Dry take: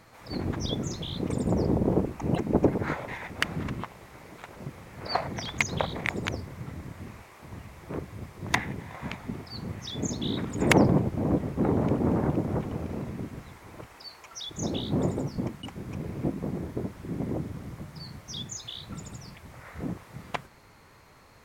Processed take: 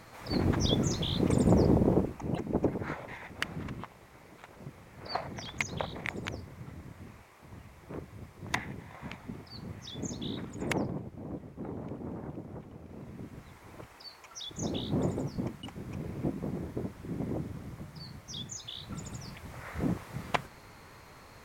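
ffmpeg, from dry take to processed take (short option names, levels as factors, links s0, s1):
-af "volume=11.2,afade=t=out:st=1.48:d=0.78:silence=0.334965,afade=t=out:st=10.24:d=0.7:silence=0.375837,afade=t=in:st=12.84:d=0.86:silence=0.266073,afade=t=in:st=18.64:d=1.15:silence=0.473151"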